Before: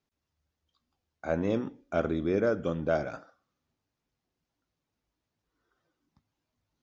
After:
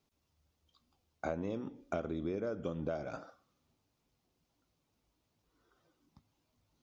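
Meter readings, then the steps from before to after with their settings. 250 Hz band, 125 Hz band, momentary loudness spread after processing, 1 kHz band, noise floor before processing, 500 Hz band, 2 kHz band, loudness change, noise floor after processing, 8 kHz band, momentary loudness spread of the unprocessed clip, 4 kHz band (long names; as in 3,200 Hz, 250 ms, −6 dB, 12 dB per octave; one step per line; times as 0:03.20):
−8.5 dB, −7.5 dB, 7 LU, −7.0 dB, below −85 dBFS, −9.5 dB, −10.5 dB, −9.0 dB, −81 dBFS, can't be measured, 11 LU, −8.5 dB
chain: parametric band 1,700 Hz −6 dB 0.55 octaves
downward compressor 16 to 1, threshold −38 dBFS, peak gain reduction 17 dB
level +5 dB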